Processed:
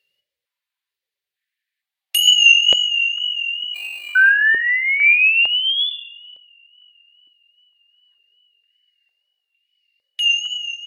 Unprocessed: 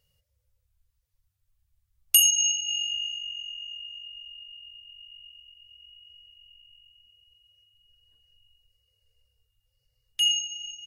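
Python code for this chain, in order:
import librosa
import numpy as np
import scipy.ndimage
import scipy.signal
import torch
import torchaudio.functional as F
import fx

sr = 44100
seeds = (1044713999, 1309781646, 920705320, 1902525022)

y = fx.wow_flutter(x, sr, seeds[0], rate_hz=2.1, depth_cents=48.0)
y = fx.sample_hold(y, sr, seeds[1], rate_hz=5300.0, jitter_pct=0, at=(3.74, 4.3), fade=0.02)
y = fx.band_shelf(y, sr, hz=2700.0, db=12.0, octaves=1.7)
y = fx.spec_paint(y, sr, seeds[2], shape='rise', start_s=4.15, length_s=1.75, low_hz=1500.0, high_hz=3500.0, level_db=-12.0)
y = fx.room_shoebox(y, sr, seeds[3], volume_m3=3400.0, walls='furnished', distance_m=1.2)
y = fx.rider(y, sr, range_db=4, speed_s=0.5)
y = fx.filter_held_highpass(y, sr, hz=2.2, low_hz=310.0, high_hz=2400.0)
y = F.gain(torch.from_numpy(y), -5.0).numpy()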